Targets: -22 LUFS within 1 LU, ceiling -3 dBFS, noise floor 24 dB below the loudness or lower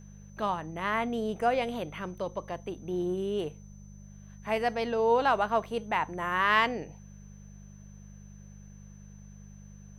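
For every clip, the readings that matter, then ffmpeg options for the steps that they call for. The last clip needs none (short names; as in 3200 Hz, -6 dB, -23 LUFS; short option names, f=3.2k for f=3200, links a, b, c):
hum 50 Hz; harmonics up to 200 Hz; hum level -46 dBFS; steady tone 6100 Hz; tone level -61 dBFS; loudness -29.5 LUFS; peak -10.0 dBFS; loudness target -22.0 LUFS
-> -af "bandreject=f=50:t=h:w=4,bandreject=f=100:t=h:w=4,bandreject=f=150:t=h:w=4,bandreject=f=200:t=h:w=4"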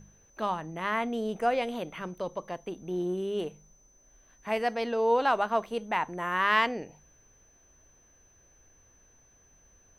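hum none; steady tone 6100 Hz; tone level -61 dBFS
-> -af "bandreject=f=6.1k:w=30"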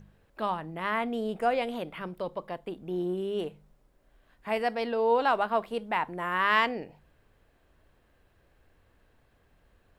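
steady tone none; loudness -30.0 LUFS; peak -9.5 dBFS; loudness target -22.0 LUFS
-> -af "volume=8dB,alimiter=limit=-3dB:level=0:latency=1"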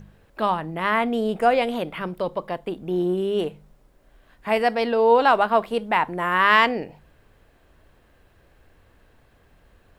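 loudness -22.0 LUFS; peak -3.0 dBFS; noise floor -59 dBFS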